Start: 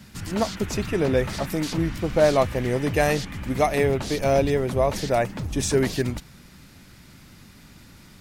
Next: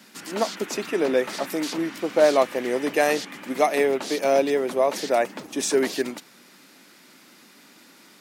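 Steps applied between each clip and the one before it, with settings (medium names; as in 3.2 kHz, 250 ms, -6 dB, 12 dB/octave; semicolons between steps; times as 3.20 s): high-pass 260 Hz 24 dB/octave; trim +1 dB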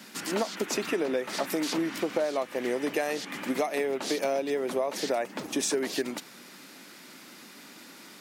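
compression 10:1, threshold -28 dBFS, peak gain reduction 16 dB; trim +3 dB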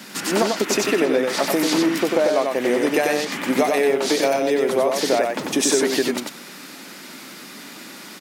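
delay 94 ms -3.5 dB; trim +8.5 dB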